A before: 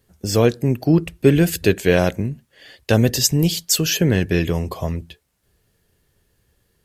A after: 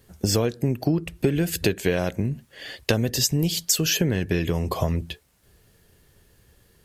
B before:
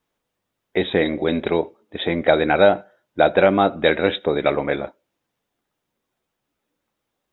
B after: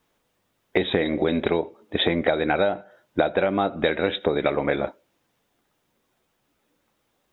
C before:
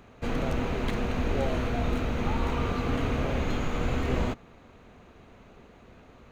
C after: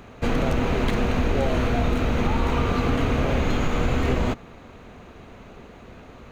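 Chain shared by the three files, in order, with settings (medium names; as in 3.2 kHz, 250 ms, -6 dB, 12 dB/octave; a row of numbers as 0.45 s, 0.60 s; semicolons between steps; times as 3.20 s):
compression 10:1, threshold -25 dBFS; normalise loudness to -24 LUFS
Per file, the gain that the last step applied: +6.5 dB, +7.0 dB, +8.5 dB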